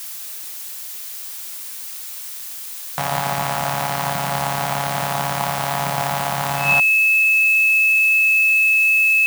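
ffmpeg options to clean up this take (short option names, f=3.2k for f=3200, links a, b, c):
-af "bandreject=f=2.6k:w=30,afftdn=nr=30:nf=-32"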